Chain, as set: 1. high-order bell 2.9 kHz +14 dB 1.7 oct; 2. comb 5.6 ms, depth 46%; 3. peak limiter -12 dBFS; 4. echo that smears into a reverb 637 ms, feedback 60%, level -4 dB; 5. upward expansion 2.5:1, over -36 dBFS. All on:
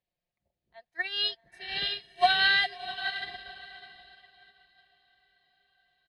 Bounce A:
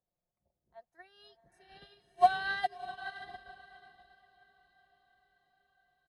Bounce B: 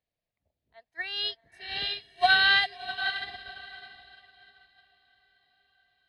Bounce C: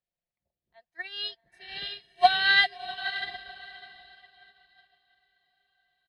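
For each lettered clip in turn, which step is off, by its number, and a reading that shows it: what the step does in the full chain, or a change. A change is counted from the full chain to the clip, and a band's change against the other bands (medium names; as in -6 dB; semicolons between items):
1, 4 kHz band -19.5 dB; 2, 2 kHz band +2.5 dB; 3, crest factor change +2.5 dB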